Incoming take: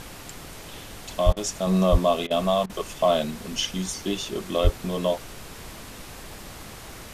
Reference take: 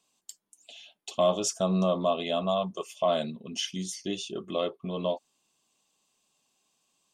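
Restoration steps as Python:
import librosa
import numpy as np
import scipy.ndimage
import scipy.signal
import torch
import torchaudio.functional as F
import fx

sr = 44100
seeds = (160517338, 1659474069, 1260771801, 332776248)

y = fx.highpass(x, sr, hz=140.0, slope=24, at=(1.25, 1.37), fade=0.02)
y = fx.highpass(y, sr, hz=140.0, slope=24, at=(1.91, 2.03), fade=0.02)
y = fx.highpass(y, sr, hz=140.0, slope=24, at=(4.63, 4.75), fade=0.02)
y = fx.fix_interpolate(y, sr, at_s=(1.33, 2.27, 2.66), length_ms=35.0)
y = fx.noise_reduce(y, sr, print_start_s=6.62, print_end_s=7.12, reduce_db=30.0)
y = fx.fix_level(y, sr, at_s=1.67, step_db=-5.0)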